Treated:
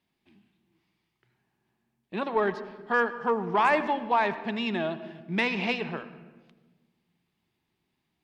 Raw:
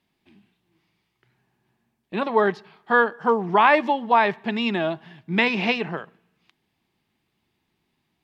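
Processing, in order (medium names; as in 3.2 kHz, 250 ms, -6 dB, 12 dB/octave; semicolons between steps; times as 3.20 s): Chebyshev shaper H 5 -25 dB, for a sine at -3.5 dBFS; on a send: reverberation RT60 1.3 s, pre-delay 77 ms, DRR 13 dB; on the sum: trim -7.5 dB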